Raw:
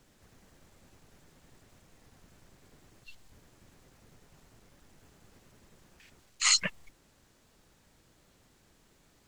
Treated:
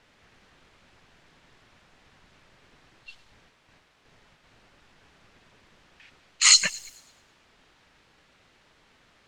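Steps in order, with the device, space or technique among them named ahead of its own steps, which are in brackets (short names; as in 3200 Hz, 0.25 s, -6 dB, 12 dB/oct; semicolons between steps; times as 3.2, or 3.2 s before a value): 3.24–4.45 gate with hold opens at -49 dBFS; tilt shelf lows -6 dB; cassette deck with a dynamic noise filter (white noise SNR 23 dB; low-pass opened by the level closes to 2500 Hz, open at -33.5 dBFS); thin delay 0.11 s, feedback 42%, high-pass 4400 Hz, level -14 dB; gain +3 dB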